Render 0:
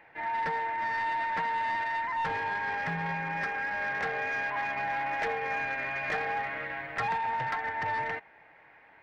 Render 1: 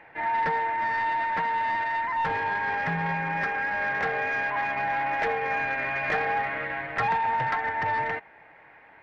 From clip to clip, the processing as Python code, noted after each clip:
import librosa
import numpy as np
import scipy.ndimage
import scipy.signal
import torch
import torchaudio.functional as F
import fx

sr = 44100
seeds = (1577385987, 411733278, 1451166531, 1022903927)

y = fx.high_shelf(x, sr, hz=5200.0, db=-10.0)
y = fx.rider(y, sr, range_db=10, speed_s=2.0)
y = y * librosa.db_to_amplitude(5.0)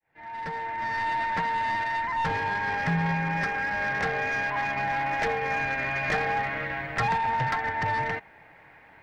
y = fx.fade_in_head(x, sr, length_s=1.15)
y = fx.bass_treble(y, sr, bass_db=8, treble_db=12)
y = y * librosa.db_to_amplitude(-1.0)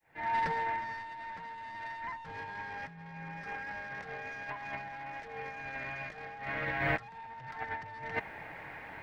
y = fx.over_compress(x, sr, threshold_db=-35.0, ratio=-0.5)
y = y * librosa.db_to_amplitude(-2.0)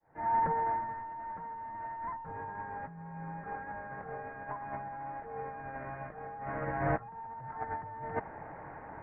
y = scipy.signal.sosfilt(scipy.signal.butter(4, 1300.0, 'lowpass', fs=sr, output='sos'), x)
y = y * librosa.db_to_amplitude(3.0)